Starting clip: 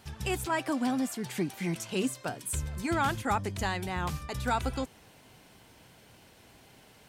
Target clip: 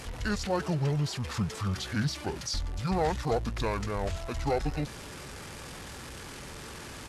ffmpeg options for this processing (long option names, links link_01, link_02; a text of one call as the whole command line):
ffmpeg -i in.wav -af "aeval=exprs='val(0)+0.5*0.0133*sgn(val(0))':channel_layout=same,asetrate=24750,aresample=44100,atempo=1.7818" out.wav